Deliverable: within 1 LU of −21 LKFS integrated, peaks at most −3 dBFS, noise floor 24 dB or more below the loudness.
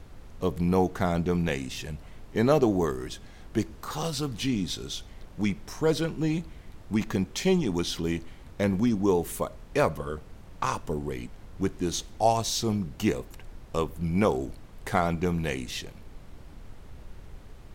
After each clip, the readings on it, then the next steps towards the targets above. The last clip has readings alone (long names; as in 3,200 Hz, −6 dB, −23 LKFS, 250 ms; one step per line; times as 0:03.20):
background noise floor −48 dBFS; target noise floor −53 dBFS; integrated loudness −28.5 LKFS; sample peak −8.0 dBFS; target loudness −21.0 LKFS
→ noise reduction from a noise print 6 dB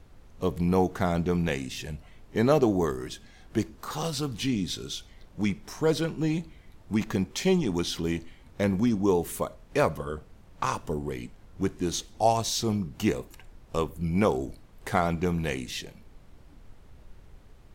background noise floor −53 dBFS; integrated loudness −28.5 LKFS; sample peak −8.5 dBFS; target loudness −21.0 LKFS
→ level +7.5 dB
brickwall limiter −3 dBFS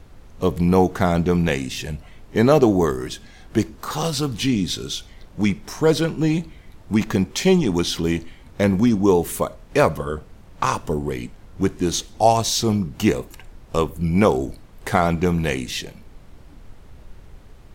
integrated loudness −21.0 LKFS; sample peak −3.0 dBFS; background noise floor −46 dBFS